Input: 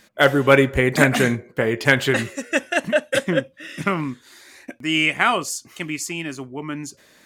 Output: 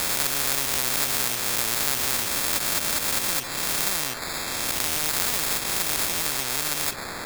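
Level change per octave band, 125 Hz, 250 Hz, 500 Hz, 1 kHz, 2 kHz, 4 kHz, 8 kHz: -14.0 dB, -15.5 dB, -15.5 dB, -6.0 dB, -9.0 dB, +2.0 dB, +9.0 dB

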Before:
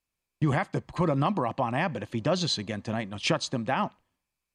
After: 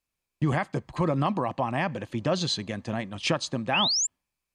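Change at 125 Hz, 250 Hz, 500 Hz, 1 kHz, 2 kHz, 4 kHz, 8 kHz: 0.0 dB, 0.0 dB, 0.0 dB, 0.0 dB, +1.5 dB, +5.0 dB, +9.5 dB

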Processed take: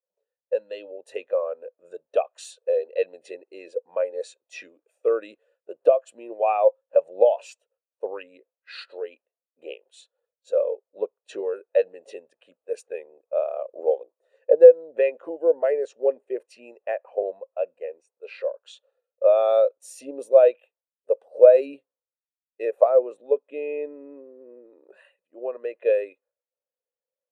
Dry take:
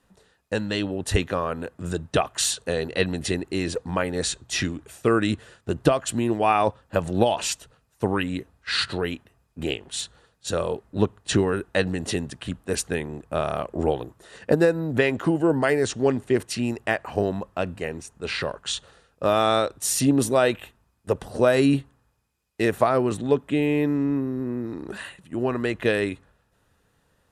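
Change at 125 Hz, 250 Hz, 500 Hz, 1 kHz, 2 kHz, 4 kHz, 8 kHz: under -40 dB, -19.0 dB, +4.0 dB, -5.0 dB, -13.0 dB, under -15 dB, under -15 dB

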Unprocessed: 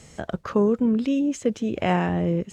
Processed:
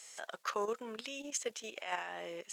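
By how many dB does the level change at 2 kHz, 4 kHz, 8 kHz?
-8.0 dB, -4.0 dB, +2.0 dB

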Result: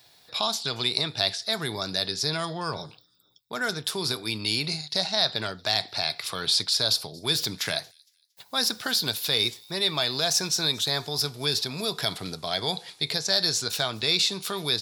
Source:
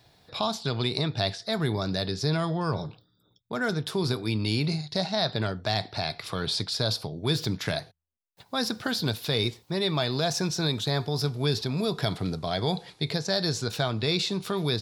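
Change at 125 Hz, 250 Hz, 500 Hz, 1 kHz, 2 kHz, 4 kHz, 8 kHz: -8.5 dB, -6.5 dB, -3.0 dB, -0.5 dB, +2.5 dB, +6.0 dB, +8.5 dB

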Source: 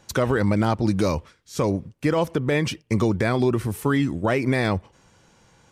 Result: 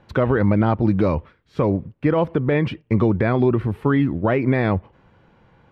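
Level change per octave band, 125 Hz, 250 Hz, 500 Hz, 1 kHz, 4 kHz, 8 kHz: +4.0 dB, +3.5 dB, +3.0 dB, +2.0 dB, -7.0 dB, under -20 dB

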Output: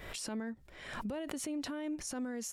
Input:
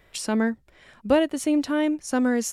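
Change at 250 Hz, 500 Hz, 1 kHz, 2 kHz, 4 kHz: -15.5 dB, -18.5 dB, -15.5 dB, -14.0 dB, -9.5 dB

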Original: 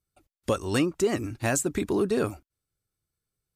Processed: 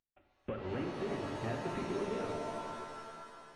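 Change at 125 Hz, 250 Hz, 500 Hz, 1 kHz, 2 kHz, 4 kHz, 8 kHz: -10.0 dB, -12.0 dB, -10.5 dB, -4.5 dB, -11.0 dB, -11.0 dB, -23.5 dB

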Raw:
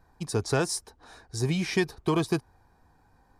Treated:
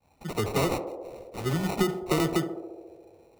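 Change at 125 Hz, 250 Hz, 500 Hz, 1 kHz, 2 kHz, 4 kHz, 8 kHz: -1.0 dB, +0.5 dB, +1.0 dB, +3.0 dB, -2.0 dB, -1.0 dB, -4.0 dB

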